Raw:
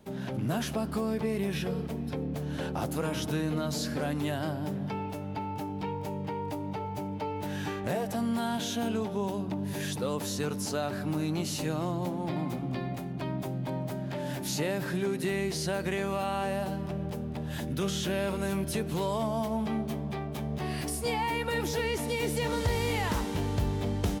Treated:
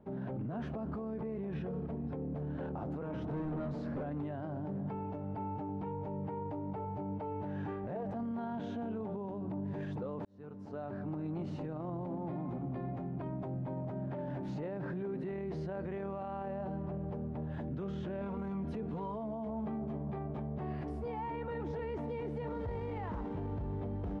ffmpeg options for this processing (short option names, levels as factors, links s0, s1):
-filter_complex "[0:a]asettb=1/sr,asplit=3[s0][s1][s2];[s0]atrim=end=3.204[s3];[s1]atrim=start=3.2:end=4.03,asetpts=PTS-STARTPTS,afade=t=in:d=0.004:c=qsin,afade=t=out:st=0.826:d=0.004:c=qsin,volume=39.8,asoftclip=hard,volume=0.0251[s4];[s2]atrim=start=4.026[s5];[s3][s4]acrossfade=d=0.004:c1=hsin:c2=qsin[s6];[s6][s5]acrossfade=d=0.004:c1=qsin:c2=hsin,asettb=1/sr,asplit=3[s7][s8][s9];[s7]atrim=end=18.214[s10];[s8]atrim=start=18.21:end=19.49,asetpts=PTS-STARTPTS,afade=t=in:d=0.004:c=qsin,afade=t=out:st=1.276:d=0.004:c=qsin,aecho=1:1:4.2:0.65,atrim=end_sample=56448[s11];[s9]atrim=start=19.486[s12];[s10][s11]acrossfade=d=0.004:c1=hsin:c2=qsin[s13];[s13][s12]acrossfade=d=0.004:c1=qsin:c2=hsin,asplit=2[s14][s15];[s14]atrim=end=10.25,asetpts=PTS-STARTPTS,afade=t=out:st=10.246:d=0.004:c=hsin[s16];[s15]atrim=start=10.25,asetpts=PTS-STARTPTS,afade=t=in:d=1.11[s17];[s16][s17]concat=n=2:v=0:a=1,lowpass=1100,alimiter=level_in=2:limit=0.0631:level=0:latency=1:release=15,volume=0.501,volume=0.794"